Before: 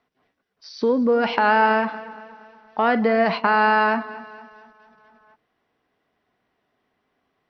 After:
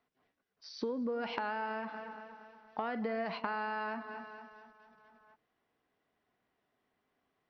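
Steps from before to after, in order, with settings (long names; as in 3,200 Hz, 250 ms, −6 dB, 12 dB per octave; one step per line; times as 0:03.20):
downward compressor 12 to 1, threshold −24 dBFS, peak gain reduction 12.5 dB
level −8.5 dB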